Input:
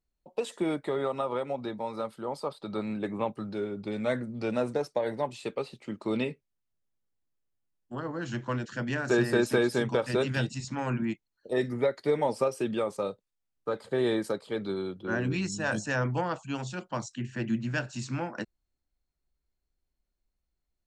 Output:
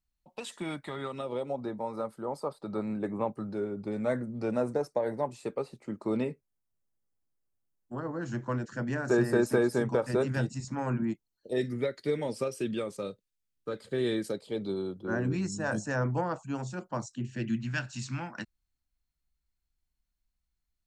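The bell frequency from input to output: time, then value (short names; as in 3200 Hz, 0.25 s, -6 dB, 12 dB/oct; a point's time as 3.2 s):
bell -12.5 dB 1.2 oct
0.95 s 440 Hz
1.67 s 3200 Hz
11.02 s 3200 Hz
11.69 s 860 Hz
14.17 s 860 Hz
15.16 s 3100 Hz
17.05 s 3100 Hz
17.63 s 460 Hz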